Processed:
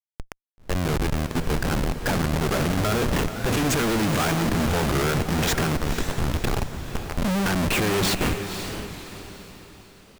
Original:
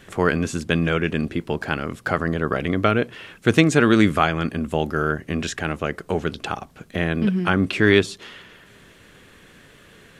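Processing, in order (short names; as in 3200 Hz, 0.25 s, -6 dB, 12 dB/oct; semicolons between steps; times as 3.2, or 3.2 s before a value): opening faded in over 3.35 s; transient shaper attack +2 dB, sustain +6 dB; 5.76–7.27 level quantiser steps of 17 dB; Schmitt trigger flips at -30 dBFS; diffused feedback echo 0.518 s, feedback 43%, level -8.5 dB; record warp 45 rpm, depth 160 cents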